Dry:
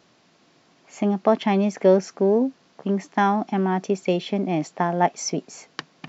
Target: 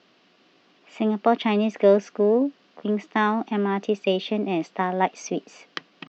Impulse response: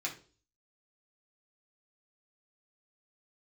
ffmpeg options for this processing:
-af "asetrate=46722,aresample=44100,atempo=0.943874,highpass=150,equalizer=f=150:t=q:w=4:g=-6,equalizer=f=840:t=q:w=4:g=-5,equalizer=f=2900:t=q:w=4:g=5,lowpass=f=4900:w=0.5412,lowpass=f=4900:w=1.3066"

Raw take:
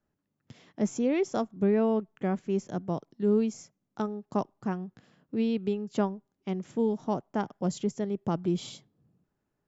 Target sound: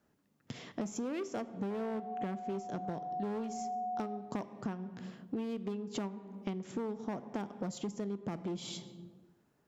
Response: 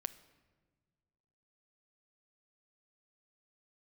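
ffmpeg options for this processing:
-filter_complex "[0:a]aeval=exprs='0.178*(cos(1*acos(clip(val(0)/0.178,-1,1)))-cos(1*PI/2))+0.0126*(cos(4*acos(clip(val(0)/0.178,-1,1)))-cos(4*PI/2))':c=same,asettb=1/sr,asplit=3[s0][s1][s2];[s0]atrim=end=1.704[s3];[s1]atrim=start=1.7:end=4.17,asetpts=PTS-STARTPTS,afade=t=in:d=0.004:c=qsin,afade=t=out:st=2.466:d=0.004:c=qsin,aeval=exprs='val(0)+0.0126*sin(2*PI*730*n/s)':c=same[s4];[s2]atrim=start=4.166[s5];[s3][s4]acrossfade=d=0.004:c1=hsin:c2=qsin[s6];[s6][s5]acrossfade=d=0.004:c1=qsin:c2=hsin,asoftclip=type=hard:threshold=0.0596,highpass=f=120:p=1[s7];[1:a]atrim=start_sample=2205,asetrate=70560,aresample=44100[s8];[s7][s8]afir=irnorm=-1:irlink=0,acompressor=threshold=0.00355:ratio=10,volume=5.01"

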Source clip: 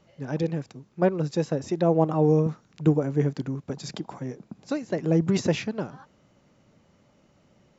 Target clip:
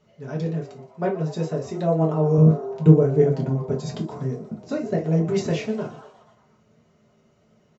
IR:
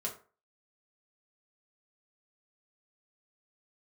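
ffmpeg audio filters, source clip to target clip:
-filter_complex "[0:a]asettb=1/sr,asplit=3[s0][s1][s2];[s0]atrim=end=2.384[s3];[s1]atrim=start=2.38:end=4.97,asetpts=PTS-STARTPTS,afade=t=in:d=0.004:c=qsin,afade=t=out:st=2.586:d=0.004:c=qsin,lowshelf=f=440:g=9.5[s4];[s2]atrim=start=4.966[s5];[s3][s4]acrossfade=d=0.004:c1=hsin:c2=qsin[s6];[s6][s5]acrossfade=d=0.004:c1=qsin:c2=hsin,asplit=7[s7][s8][s9][s10][s11][s12][s13];[s8]adelay=120,afreqshift=120,volume=0.126[s14];[s9]adelay=240,afreqshift=240,volume=0.0776[s15];[s10]adelay=360,afreqshift=360,volume=0.0484[s16];[s11]adelay=480,afreqshift=480,volume=0.0299[s17];[s12]adelay=600,afreqshift=600,volume=0.0186[s18];[s13]adelay=720,afreqshift=720,volume=0.0115[s19];[s7][s14][s15][s16][s17][s18][s19]amix=inputs=7:normalize=0[s20];[1:a]atrim=start_sample=2205,atrim=end_sample=3528[s21];[s20][s21]afir=irnorm=-1:irlink=0,volume=0.794"

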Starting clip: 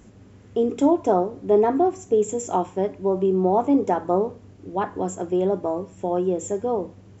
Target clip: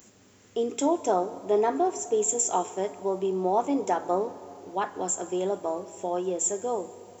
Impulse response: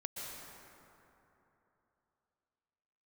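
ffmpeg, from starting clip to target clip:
-filter_complex "[0:a]aemphasis=mode=production:type=riaa,asplit=2[s0][s1];[1:a]atrim=start_sample=2205[s2];[s1][s2]afir=irnorm=-1:irlink=0,volume=0.2[s3];[s0][s3]amix=inputs=2:normalize=0,volume=0.668"

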